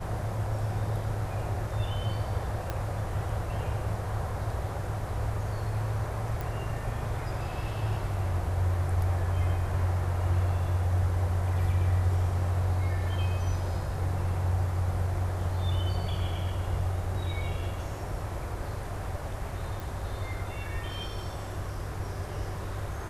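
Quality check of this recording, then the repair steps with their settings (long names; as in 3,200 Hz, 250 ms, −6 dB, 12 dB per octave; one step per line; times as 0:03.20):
0:02.70: click −18 dBFS
0:06.41: click
0:19.80: click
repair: click removal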